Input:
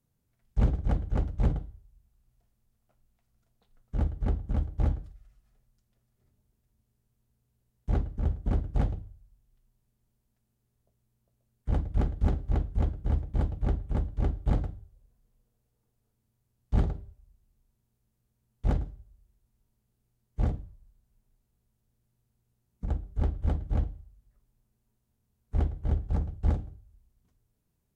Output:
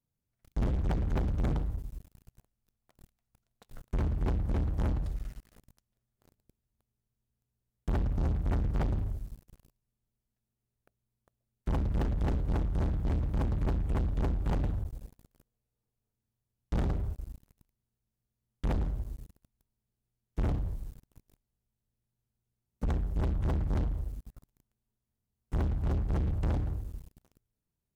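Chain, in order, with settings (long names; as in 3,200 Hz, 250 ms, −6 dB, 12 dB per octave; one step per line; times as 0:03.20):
downward compressor 3 to 1, threshold −37 dBFS, peak gain reduction 13.5 dB
0:07.95–0:08.71: comb filter 1.4 ms, depth 34%
leveller curve on the samples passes 5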